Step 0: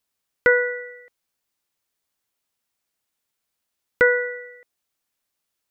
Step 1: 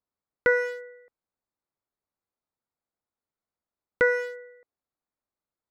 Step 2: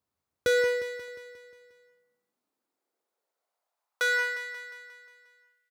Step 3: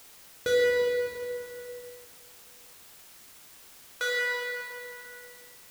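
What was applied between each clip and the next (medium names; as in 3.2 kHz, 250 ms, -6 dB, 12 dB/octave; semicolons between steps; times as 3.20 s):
local Wiener filter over 15 samples; peaking EQ 1.7 kHz -4.5 dB 0.32 oct; trim -4 dB
hard clipper -26.5 dBFS, distortion -5 dB; high-pass sweep 79 Hz -> 2.4 kHz, 1.11–5.06 s; on a send: feedback delay 178 ms, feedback 57%, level -10 dB; on the sum: trim +5 dB
reverberation RT60 2.4 s, pre-delay 6 ms, DRR -4.5 dB; in parallel at -9.5 dB: word length cut 6-bit, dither triangular; on the sum: trim -6.5 dB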